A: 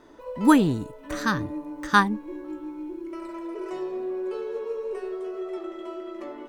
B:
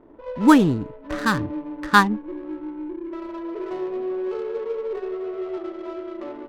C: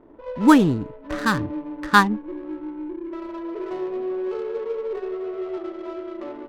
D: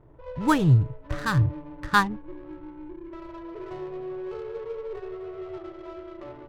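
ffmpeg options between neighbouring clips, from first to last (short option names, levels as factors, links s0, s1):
-af "adynamicsmooth=sensitivity=7.5:basefreq=570,volume=1.5"
-af anull
-af "lowshelf=f=170:t=q:w=3:g=10.5,volume=0.562"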